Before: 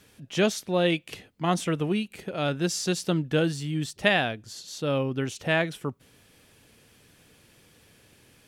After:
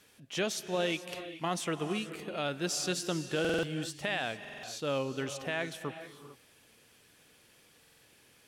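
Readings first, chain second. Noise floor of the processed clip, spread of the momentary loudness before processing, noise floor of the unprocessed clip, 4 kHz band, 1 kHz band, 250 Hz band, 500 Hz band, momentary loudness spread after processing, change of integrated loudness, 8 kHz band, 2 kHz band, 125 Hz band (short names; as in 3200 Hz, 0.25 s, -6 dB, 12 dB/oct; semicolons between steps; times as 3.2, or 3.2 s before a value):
-63 dBFS, 9 LU, -59 dBFS, -5.0 dB, -6.5 dB, -8.5 dB, -6.5 dB, 10 LU, -7.0 dB, -3.0 dB, -7.0 dB, -11.0 dB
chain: low shelf 270 Hz -10 dB; limiter -18 dBFS, peak gain reduction 11.5 dB; non-linear reverb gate 0.47 s rising, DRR 10.5 dB; stuck buffer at 3.4/4.4/7.8, samples 2048, times 4; gain -3 dB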